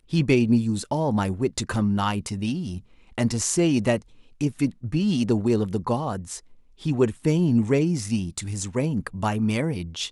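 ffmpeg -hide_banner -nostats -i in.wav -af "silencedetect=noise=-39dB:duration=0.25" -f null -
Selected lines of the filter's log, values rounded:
silence_start: 2.80
silence_end: 3.18 | silence_duration: 0.38
silence_start: 4.02
silence_end: 4.41 | silence_duration: 0.39
silence_start: 6.39
silence_end: 6.81 | silence_duration: 0.42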